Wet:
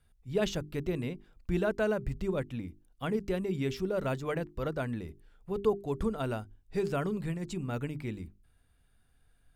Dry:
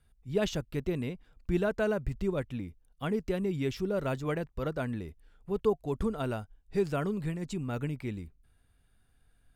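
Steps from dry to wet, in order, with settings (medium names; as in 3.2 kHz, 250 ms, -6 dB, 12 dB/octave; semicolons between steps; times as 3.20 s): hum notches 50/100/150/200/250/300/350/400 Hz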